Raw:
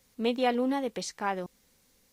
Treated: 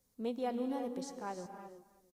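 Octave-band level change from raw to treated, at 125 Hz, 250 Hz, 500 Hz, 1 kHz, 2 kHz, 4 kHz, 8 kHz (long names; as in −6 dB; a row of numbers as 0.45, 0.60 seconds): −8.0, −7.5, −9.0, −10.0, −16.5, −15.5, −10.5 decibels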